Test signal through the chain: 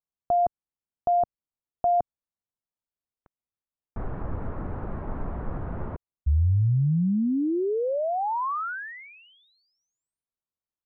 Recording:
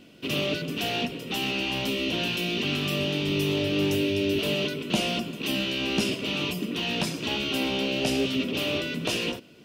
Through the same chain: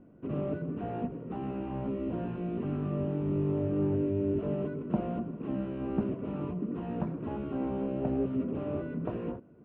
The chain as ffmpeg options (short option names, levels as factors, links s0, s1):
-af "lowpass=f=1300:w=0.5412,lowpass=f=1300:w=1.3066,lowshelf=f=190:g=8,volume=0.501"